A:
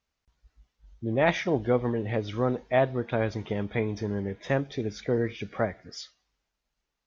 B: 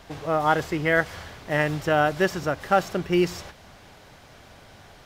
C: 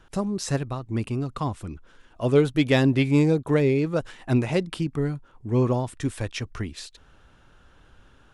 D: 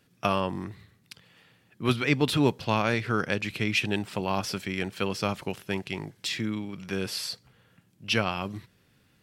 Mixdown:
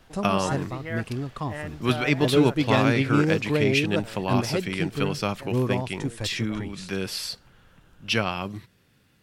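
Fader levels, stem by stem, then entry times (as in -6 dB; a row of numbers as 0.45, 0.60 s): -19.5, -12.5, -3.0, +1.5 dB; 0.90, 0.00, 0.00, 0.00 s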